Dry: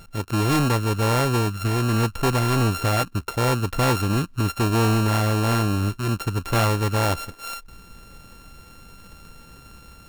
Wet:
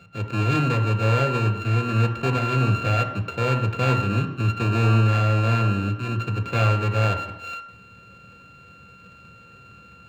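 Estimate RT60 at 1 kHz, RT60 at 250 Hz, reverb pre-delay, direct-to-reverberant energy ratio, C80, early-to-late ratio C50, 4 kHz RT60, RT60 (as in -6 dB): 0.85 s, 0.85 s, 3 ms, 5.0 dB, 12.0 dB, 10.0 dB, 0.90 s, 0.85 s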